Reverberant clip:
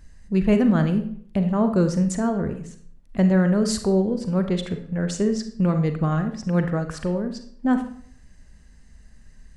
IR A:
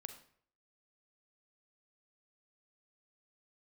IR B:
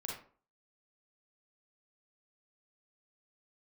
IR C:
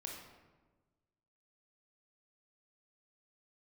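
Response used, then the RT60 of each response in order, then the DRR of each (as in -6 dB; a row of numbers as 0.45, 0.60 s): A; 0.60, 0.45, 1.3 s; 7.0, -2.5, -1.0 dB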